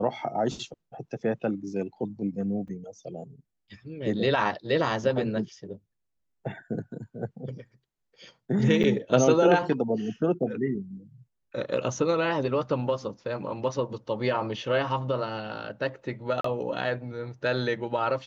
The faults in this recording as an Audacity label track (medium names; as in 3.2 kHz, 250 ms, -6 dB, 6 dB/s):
2.680000	2.680000	dropout 4.2 ms
8.830000	8.840000	dropout 8.2 ms
16.410000	16.440000	dropout 34 ms